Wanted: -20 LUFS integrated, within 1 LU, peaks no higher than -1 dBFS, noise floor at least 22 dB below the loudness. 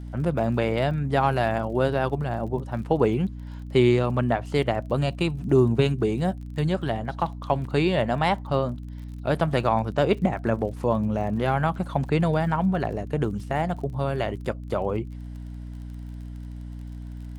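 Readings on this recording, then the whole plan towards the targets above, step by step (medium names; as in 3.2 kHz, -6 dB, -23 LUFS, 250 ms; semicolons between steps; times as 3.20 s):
tick rate 38 per s; hum 60 Hz; highest harmonic 300 Hz; hum level -34 dBFS; loudness -25.0 LUFS; peak level -7.5 dBFS; loudness target -20.0 LUFS
-> de-click; de-hum 60 Hz, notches 5; trim +5 dB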